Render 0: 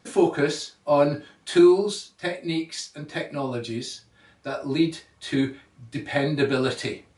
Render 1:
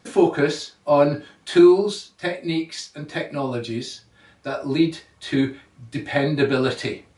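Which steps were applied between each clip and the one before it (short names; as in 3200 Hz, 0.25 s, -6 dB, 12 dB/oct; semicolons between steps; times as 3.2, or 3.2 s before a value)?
dynamic EQ 9700 Hz, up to -6 dB, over -49 dBFS, Q 0.71; gain +3 dB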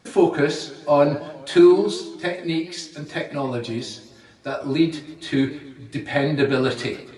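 warbling echo 0.142 s, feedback 58%, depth 176 cents, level -17 dB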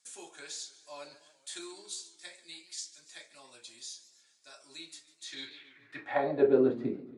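band-pass sweep 7900 Hz -> 240 Hz, 5.18–6.79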